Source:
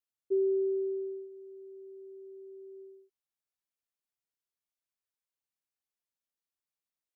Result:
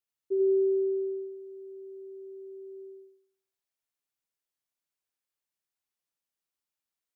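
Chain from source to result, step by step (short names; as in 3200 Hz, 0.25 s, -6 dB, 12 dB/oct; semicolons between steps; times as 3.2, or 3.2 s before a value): thinning echo 86 ms, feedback 46%, high-pass 320 Hz, level -3 dB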